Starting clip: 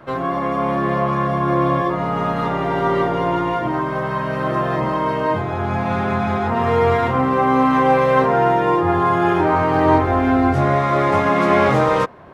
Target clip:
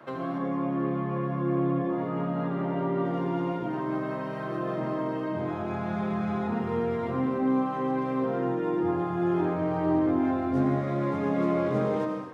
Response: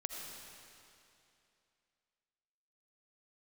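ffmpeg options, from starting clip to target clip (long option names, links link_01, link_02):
-filter_complex "[0:a]asettb=1/sr,asplit=3[link_01][link_02][link_03];[link_01]atrim=end=0.384[link_04];[link_02]atrim=start=0.38:end=3.05,asetpts=PTS-STARTPTS,afade=type=in:duration=0.004:curve=qsin,afade=type=out:start_time=2.666:duration=0.004:curve=qsin,acrossover=split=3100[link_05][link_06];[link_06]acompressor=threshold=-57dB:ratio=4:attack=1:release=60[link_07];[link_05][link_07]amix=inputs=2:normalize=0[link_08];[link_03]atrim=start=3.046[link_09];[link_04][link_08]acrossfade=duration=0.004:curve1=hsin:curve2=qsin[link_10];[link_10][link_09]acrossfade=duration=0.004:curve1=qsin:curve2=hsin,highpass=170,acrossover=split=390[link_11][link_12];[link_12]acompressor=threshold=-31dB:ratio=6[link_13];[link_11][link_13]amix=inputs=2:normalize=0[link_14];[1:a]atrim=start_sample=2205,afade=type=out:start_time=0.34:duration=0.01,atrim=end_sample=15435[link_15];[link_14][link_15]afir=irnorm=-1:irlink=0,volume=-3.5dB"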